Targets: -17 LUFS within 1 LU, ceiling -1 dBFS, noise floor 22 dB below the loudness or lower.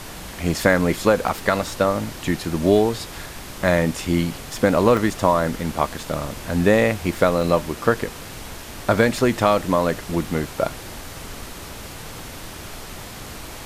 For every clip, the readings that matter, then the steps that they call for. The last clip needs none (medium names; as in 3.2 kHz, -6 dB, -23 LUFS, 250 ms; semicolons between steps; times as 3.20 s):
dropouts 4; longest dropout 2.8 ms; noise floor -36 dBFS; noise floor target -43 dBFS; loudness -21.0 LUFS; peak level -3.0 dBFS; loudness target -17.0 LUFS
-> interpolate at 1.28/4.97/6.03/7.41 s, 2.8 ms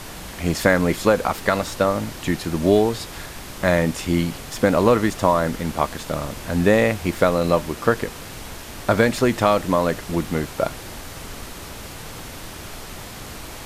dropouts 0; noise floor -36 dBFS; noise floor target -43 dBFS
-> noise print and reduce 7 dB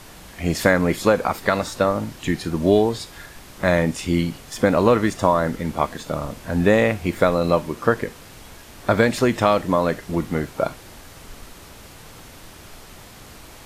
noise floor -43 dBFS; loudness -21.0 LUFS; peak level -3.0 dBFS; loudness target -17.0 LUFS
-> trim +4 dB; peak limiter -1 dBFS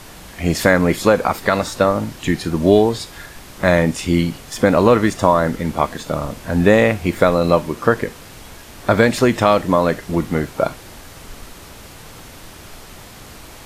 loudness -17.0 LUFS; peak level -1.0 dBFS; noise floor -39 dBFS